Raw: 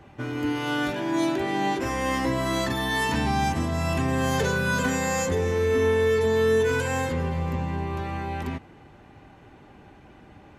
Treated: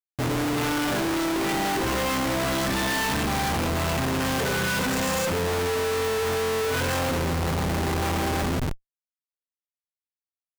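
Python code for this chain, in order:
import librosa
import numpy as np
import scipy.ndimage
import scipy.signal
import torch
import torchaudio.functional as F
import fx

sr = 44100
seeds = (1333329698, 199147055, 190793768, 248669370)

y = fx.rev_gated(x, sr, seeds[0], gate_ms=170, shape='rising', drr_db=11.0)
y = fx.schmitt(y, sr, flips_db=-37.5)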